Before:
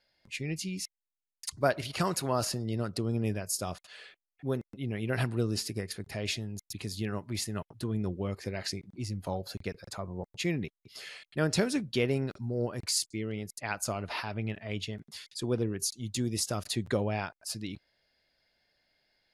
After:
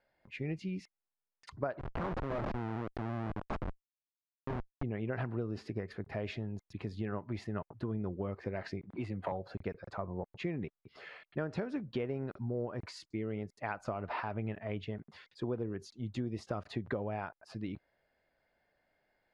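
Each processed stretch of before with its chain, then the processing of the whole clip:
0:01.79–0:04.83: Bessel low-pass filter 6,300 Hz + hum removal 262.9 Hz, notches 16 + comparator with hysteresis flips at −31 dBFS
0:08.90–0:09.32: parametric band 5,500 Hz −13.5 dB 0.41 octaves + mid-hump overdrive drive 15 dB, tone 6,500 Hz, clips at −21 dBFS + multiband upward and downward compressor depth 40%
whole clip: low-pass filter 1,300 Hz 12 dB per octave; low-shelf EQ 460 Hz −6.5 dB; downward compressor 10 to 1, threshold −37 dBFS; level +5 dB

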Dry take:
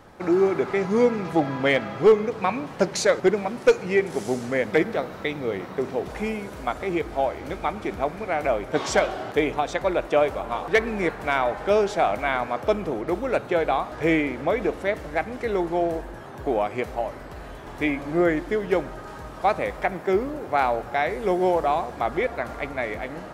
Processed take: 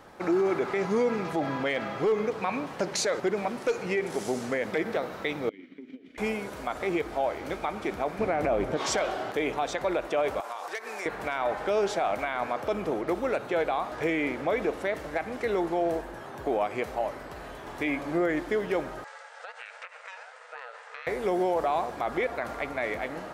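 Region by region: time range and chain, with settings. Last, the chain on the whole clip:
0:05.49–0:06.18: downward compressor 12 to 1, threshold −29 dBFS + formant filter i + transient designer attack +7 dB, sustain −2 dB
0:08.19–0:08.77: low-shelf EQ 490 Hz +11 dB + highs frequency-modulated by the lows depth 0.18 ms
0:10.40–0:11.06: high-pass filter 670 Hz + high shelf with overshoot 4,300 Hz +6 dB, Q 1.5 + downward compressor, threshold −31 dBFS
0:19.04–0:21.07: linear-phase brick-wall band-pass 840–9,200 Hz + downward compressor 10 to 1, threshold −34 dBFS + ring modulation 390 Hz
whole clip: low-shelf EQ 180 Hz −9 dB; brickwall limiter −18 dBFS

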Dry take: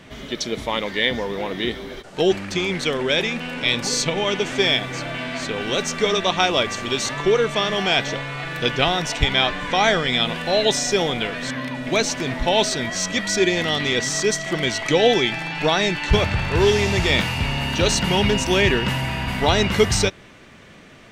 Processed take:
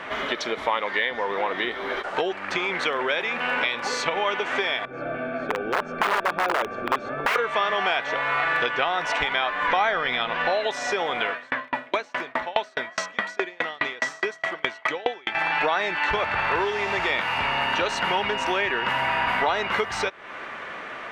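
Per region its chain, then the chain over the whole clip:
0:04.85–0:07.36: moving average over 45 samples + wrap-around overflow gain 21 dB
0:09.67–0:10.50: inverse Chebyshev low-pass filter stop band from 11,000 Hz + low-shelf EQ 110 Hz +10.5 dB
0:11.31–0:15.35: high-pass filter 81 Hz + tremolo with a ramp in dB decaying 4.8 Hz, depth 37 dB
whole clip: bass and treble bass −13 dB, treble −9 dB; downward compressor 6 to 1, threshold −34 dBFS; parametric band 1,200 Hz +13.5 dB 2.3 octaves; level +3.5 dB

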